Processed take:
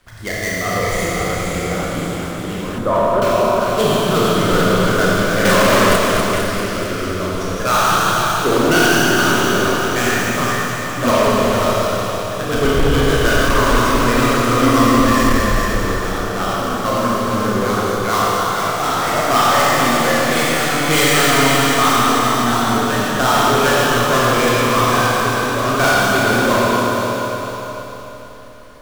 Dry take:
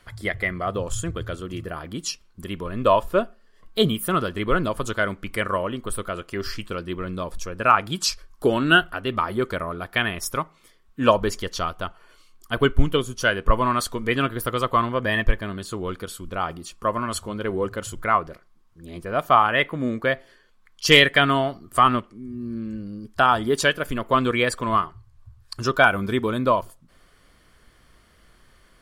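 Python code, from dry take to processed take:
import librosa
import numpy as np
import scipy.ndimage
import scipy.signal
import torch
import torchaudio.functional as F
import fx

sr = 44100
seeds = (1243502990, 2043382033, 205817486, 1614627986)

y = fx.dead_time(x, sr, dead_ms=0.12)
y = fx.rev_schroeder(y, sr, rt60_s=3.7, comb_ms=26, drr_db=-7.0)
y = fx.leveller(y, sr, passes=3, at=(5.45, 5.96))
y = np.clip(y, -10.0 ** (-11.0 / 20.0), 10.0 ** (-11.0 / 20.0))
y = fx.lowpass(y, sr, hz=1500.0, slope=24, at=(2.78, 3.22))
y = fx.echo_feedback(y, sr, ms=452, feedback_pct=34, wet_db=-8.0)
y = fx.echo_pitch(y, sr, ms=578, semitones=1, count=2, db_per_echo=-6.0)
y = fx.peak_eq(y, sr, hz=270.0, db=11.5, octaves=0.28, at=(14.62, 15.39))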